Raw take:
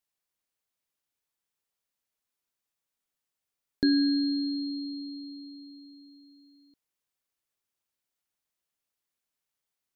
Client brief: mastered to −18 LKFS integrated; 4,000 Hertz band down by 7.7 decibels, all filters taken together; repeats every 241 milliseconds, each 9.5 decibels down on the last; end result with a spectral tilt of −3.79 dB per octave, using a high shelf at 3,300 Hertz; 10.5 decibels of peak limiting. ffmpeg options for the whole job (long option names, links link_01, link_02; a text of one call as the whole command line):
ffmpeg -i in.wav -af "highshelf=frequency=3300:gain=-6,equalizer=frequency=4000:width_type=o:gain=-4,alimiter=level_in=1dB:limit=-24dB:level=0:latency=1,volume=-1dB,aecho=1:1:241|482|723|964:0.335|0.111|0.0365|0.012,volume=15dB" out.wav